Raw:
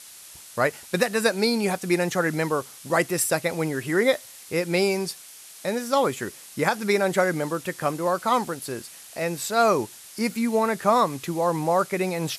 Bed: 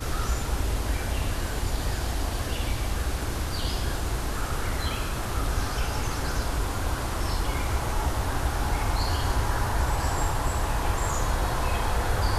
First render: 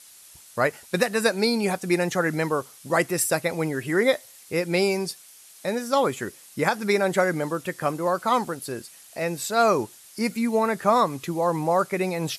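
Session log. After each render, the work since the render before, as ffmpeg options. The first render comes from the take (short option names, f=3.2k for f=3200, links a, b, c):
-af "afftdn=nr=6:nf=-45"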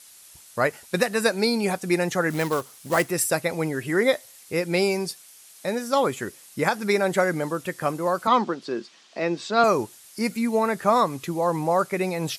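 -filter_complex "[0:a]asettb=1/sr,asplit=3[a][b][c];[a]atrim=end=2.304[d];[b]atrim=start=2.3:end=3.1,asetpts=PTS-STARTPTS,afade=t=in:d=0.004:c=qsin,afade=t=out:st=0.796:d=0.004:c=qsin,acrusher=bits=3:mode=log:mix=0:aa=0.000001[e];[c]atrim=start=3.096[f];[d][e]acrossfade=d=0.004:c1=hsin:c2=qsin[g];[g][f]acrossfade=d=0.004:c1=qsin:c2=hsin,asettb=1/sr,asplit=3[h][i][j];[h]atrim=end=8.274[k];[i]atrim=start=8.27:end=9.64,asetpts=PTS-STARTPTS,afade=t=in:d=0.004:c=qsin,afade=t=out:st=1.366:d=0.004:c=qsin,highpass=f=170:w=0.5412,highpass=f=170:w=1.3066,equalizer=f=210:t=q:w=4:g=5,equalizer=f=350:t=q:w=4:g=7,equalizer=f=1.1k:t=q:w=4:g=5,equalizer=f=3.3k:t=q:w=4:g=4,lowpass=f=5.6k:w=0.5412,lowpass=f=5.6k:w=1.3066[l];[j]atrim=start=9.636[m];[k][l]acrossfade=d=0.004:c1=hsin:c2=qsin[n];[n][m]acrossfade=d=0.004:c1=qsin:c2=hsin"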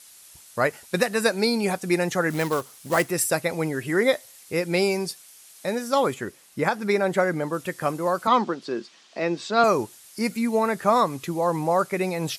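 -filter_complex "[0:a]asettb=1/sr,asplit=3[a][b][c];[a]atrim=end=6.144[d];[b]atrim=start=6.14:end=7.53,asetpts=PTS-STARTPTS,afade=t=in:d=0.004:c=qsin,afade=t=out:st=1.386:d=0.004:c=qsin,highshelf=f=3.6k:g=-7[e];[c]atrim=start=7.526[f];[d][e]acrossfade=d=0.004:c1=hsin:c2=qsin[g];[g][f]acrossfade=d=0.004:c1=qsin:c2=hsin"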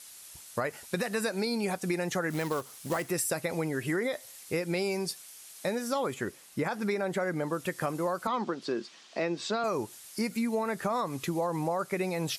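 -af "alimiter=limit=-14dB:level=0:latency=1,acompressor=threshold=-27dB:ratio=6"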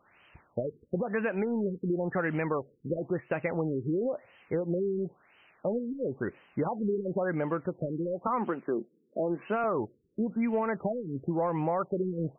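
-filter_complex "[0:a]asplit=2[a][b];[b]asoftclip=type=hard:threshold=-30dB,volume=-11.5dB[c];[a][c]amix=inputs=2:normalize=0,afftfilt=real='re*lt(b*sr/1024,470*pow(3200/470,0.5+0.5*sin(2*PI*0.97*pts/sr)))':imag='im*lt(b*sr/1024,470*pow(3200/470,0.5+0.5*sin(2*PI*0.97*pts/sr)))':win_size=1024:overlap=0.75"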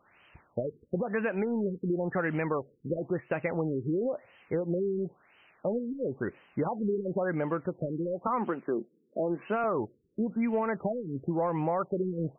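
-af anull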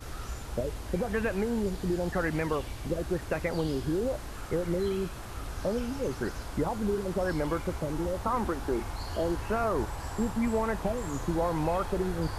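-filter_complex "[1:a]volume=-11dB[a];[0:a][a]amix=inputs=2:normalize=0"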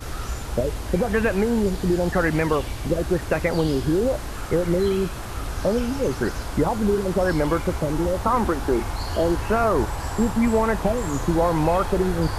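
-af "volume=8.5dB"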